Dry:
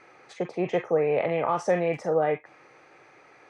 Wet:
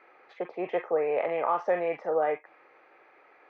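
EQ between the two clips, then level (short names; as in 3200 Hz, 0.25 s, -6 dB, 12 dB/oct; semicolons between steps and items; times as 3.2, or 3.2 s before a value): dynamic EQ 1100 Hz, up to +3 dB, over -36 dBFS, Q 1; BPF 380–3400 Hz; air absorption 150 m; -2.0 dB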